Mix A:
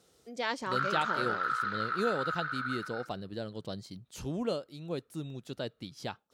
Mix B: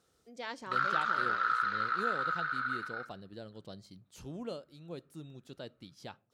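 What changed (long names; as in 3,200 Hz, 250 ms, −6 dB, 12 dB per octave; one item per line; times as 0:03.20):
speech −10.0 dB
reverb: on, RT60 0.45 s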